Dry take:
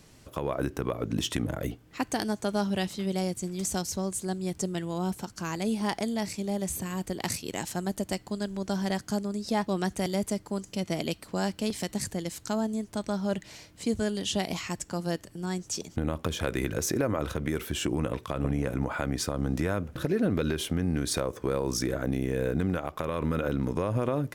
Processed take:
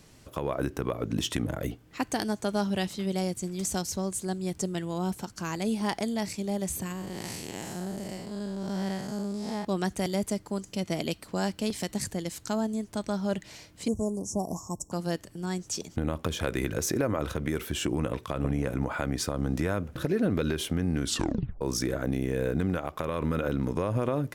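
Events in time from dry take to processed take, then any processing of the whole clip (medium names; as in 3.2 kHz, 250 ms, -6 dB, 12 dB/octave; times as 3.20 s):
6.92–9.65 s: spectral blur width 190 ms
13.88–14.92 s: Chebyshev band-stop 1.1–5.6 kHz, order 5
21.02 s: tape stop 0.59 s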